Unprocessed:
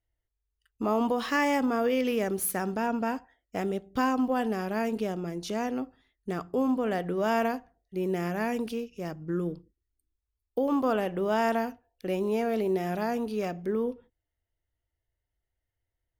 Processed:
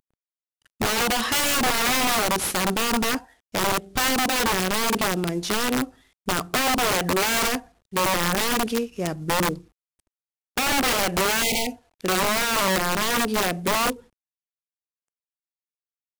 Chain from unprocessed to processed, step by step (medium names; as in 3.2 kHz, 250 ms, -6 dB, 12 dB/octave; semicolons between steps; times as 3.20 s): CVSD coder 64 kbps; integer overflow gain 25 dB; spectral replace 11.45–11.74 s, 920–1900 Hz after; trim +8.5 dB